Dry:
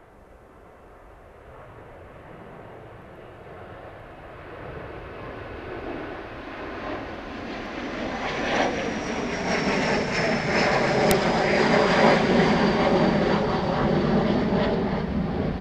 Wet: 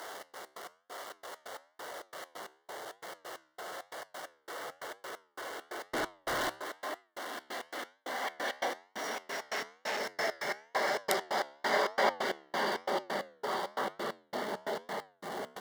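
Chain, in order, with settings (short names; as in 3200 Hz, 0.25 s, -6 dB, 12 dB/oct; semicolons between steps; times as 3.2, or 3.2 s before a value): zero-crossing step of -29.5 dBFS; HPF 560 Hz 12 dB/oct; 5.93–6.54 sample leveller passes 5; step gate "xx.x.x.." 134 bpm -60 dB; flange 1 Hz, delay 9.1 ms, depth 5.5 ms, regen -85%; Butterworth band-stop 2500 Hz, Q 4.3; 9.15–10 core saturation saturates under 2600 Hz; gain -2.5 dB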